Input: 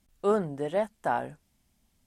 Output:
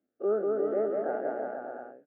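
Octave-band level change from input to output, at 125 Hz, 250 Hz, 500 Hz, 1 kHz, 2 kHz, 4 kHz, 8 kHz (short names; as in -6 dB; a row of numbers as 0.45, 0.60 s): under -10 dB, -2.5 dB, +1.5 dB, -6.5 dB, -6.0 dB, under -25 dB, n/a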